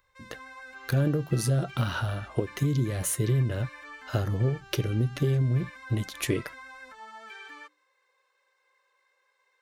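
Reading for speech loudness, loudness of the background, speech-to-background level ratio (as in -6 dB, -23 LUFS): -28.5 LUFS, -45.5 LUFS, 17.0 dB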